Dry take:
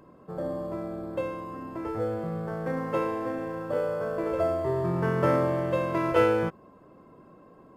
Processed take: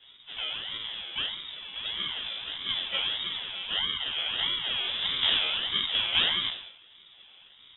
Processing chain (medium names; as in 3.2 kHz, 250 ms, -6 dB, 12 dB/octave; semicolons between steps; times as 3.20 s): spectral sustain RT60 0.75 s; Chebyshev high-pass 220 Hz, order 2; treble shelf 2.8 kHz +4.5 dB; decimation with a swept rate 34×, swing 60% 1.6 Hz; harmony voices +5 st -5 dB; flange 0.55 Hz, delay 5.5 ms, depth 6.3 ms, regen +59%; frequency inversion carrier 3.7 kHz